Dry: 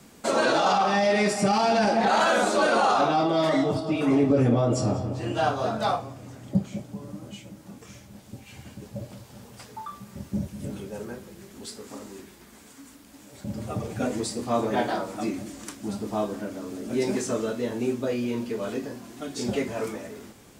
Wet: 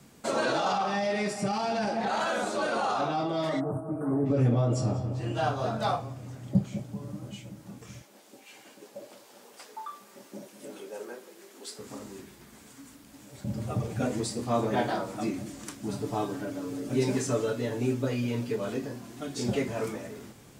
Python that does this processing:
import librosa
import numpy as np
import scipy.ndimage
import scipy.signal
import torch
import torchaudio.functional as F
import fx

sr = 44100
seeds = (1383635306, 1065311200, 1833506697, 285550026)

y = fx.cheby1_bandstop(x, sr, low_hz=1600.0, high_hz=8700.0, order=4, at=(3.59, 4.25), fade=0.02)
y = fx.highpass(y, sr, hz=320.0, slope=24, at=(8.02, 11.79))
y = fx.comb(y, sr, ms=7.0, depth=0.65, at=(15.88, 18.56))
y = fx.peak_eq(y, sr, hz=130.0, db=7.0, octaves=0.49)
y = fx.rider(y, sr, range_db=3, speed_s=2.0)
y = F.gain(torch.from_numpy(y), -5.0).numpy()